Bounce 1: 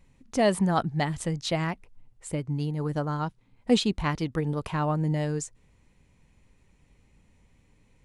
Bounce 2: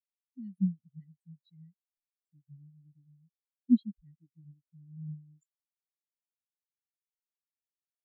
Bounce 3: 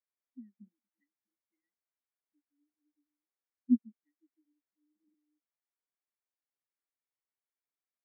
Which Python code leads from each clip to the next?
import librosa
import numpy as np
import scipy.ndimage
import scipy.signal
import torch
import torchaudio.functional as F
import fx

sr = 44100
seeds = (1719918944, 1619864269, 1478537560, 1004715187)

y1 = scipy.signal.sosfilt(scipy.signal.cheby2(4, 40, [480.0, 1200.0], 'bandstop', fs=sr, output='sos'), x)
y1 = fx.high_shelf(y1, sr, hz=3000.0, db=10.5)
y1 = fx.spectral_expand(y1, sr, expansion=4.0)
y1 = y1 * 10.0 ** (-3.5 / 20.0)
y2 = fx.brickwall_bandpass(y1, sr, low_hz=230.0, high_hz=2400.0)